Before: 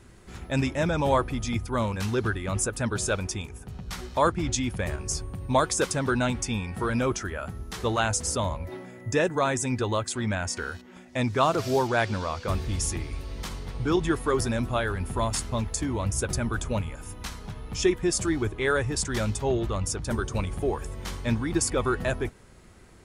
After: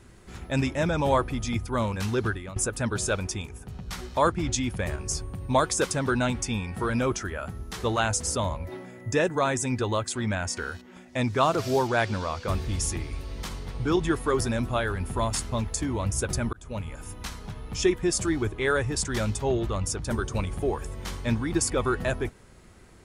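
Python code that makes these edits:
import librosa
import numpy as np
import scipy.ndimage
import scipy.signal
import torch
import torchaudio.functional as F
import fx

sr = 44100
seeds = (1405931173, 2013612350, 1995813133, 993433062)

y = fx.edit(x, sr, fx.fade_out_to(start_s=2.27, length_s=0.29, floor_db=-15.0),
    fx.fade_in_span(start_s=16.53, length_s=0.44), tone=tone)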